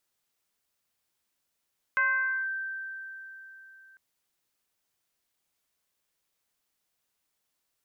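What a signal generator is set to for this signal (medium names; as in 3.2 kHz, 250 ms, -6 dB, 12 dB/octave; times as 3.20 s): FM tone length 2.00 s, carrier 1.56 kHz, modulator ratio 0.32, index 0.82, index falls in 0.51 s linear, decay 3.73 s, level -21 dB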